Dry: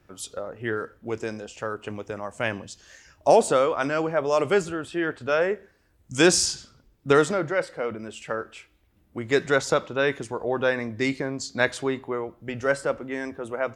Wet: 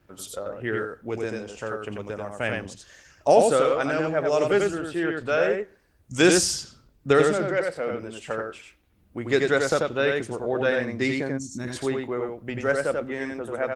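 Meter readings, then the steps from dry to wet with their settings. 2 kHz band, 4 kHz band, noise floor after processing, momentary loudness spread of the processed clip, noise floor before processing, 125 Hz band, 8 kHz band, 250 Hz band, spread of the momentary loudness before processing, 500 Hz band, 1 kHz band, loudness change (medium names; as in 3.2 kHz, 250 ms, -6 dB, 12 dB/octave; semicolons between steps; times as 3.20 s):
0.0 dB, -1.0 dB, -62 dBFS, 14 LU, -63 dBFS, +1.0 dB, -0.5 dB, +1.5 dB, 15 LU, +1.0 dB, -1.0 dB, +0.5 dB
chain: time-frequency box 11.29–11.67 s, 380–5400 Hz -19 dB; dynamic bell 1 kHz, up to -8 dB, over -45 dBFS, Q 3.9; vibrato 1.9 Hz 12 cents; on a send: delay 89 ms -3.5 dB; on the sum: Opus 20 kbps 48 kHz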